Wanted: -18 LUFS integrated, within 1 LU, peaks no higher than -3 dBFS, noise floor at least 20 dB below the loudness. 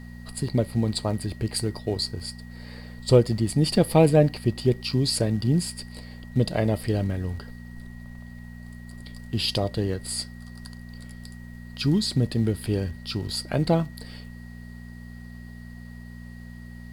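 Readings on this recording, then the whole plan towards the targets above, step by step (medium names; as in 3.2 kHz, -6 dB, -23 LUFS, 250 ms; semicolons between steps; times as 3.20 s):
hum 60 Hz; highest harmonic 240 Hz; hum level -40 dBFS; steady tone 1.9 kHz; tone level -51 dBFS; loudness -25.0 LUFS; peak level -6.0 dBFS; loudness target -18.0 LUFS
-> de-hum 60 Hz, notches 4; band-stop 1.9 kHz, Q 30; trim +7 dB; peak limiter -3 dBFS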